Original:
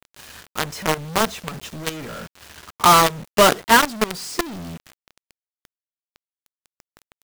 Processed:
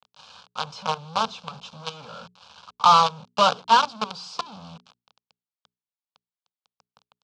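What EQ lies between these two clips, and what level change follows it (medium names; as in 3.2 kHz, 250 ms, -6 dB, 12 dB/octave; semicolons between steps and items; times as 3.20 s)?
cabinet simulation 220–4600 Hz, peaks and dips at 260 Hz -6 dB, 390 Hz -9 dB, 650 Hz -10 dB, 1.8 kHz -3 dB; hum notches 60/120/180/240/300/360/420 Hz; static phaser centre 800 Hz, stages 4; +2.0 dB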